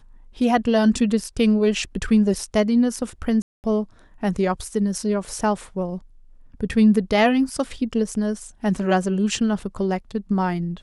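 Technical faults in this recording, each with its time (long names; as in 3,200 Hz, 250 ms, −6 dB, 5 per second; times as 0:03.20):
0:03.42–0:03.64: drop-out 219 ms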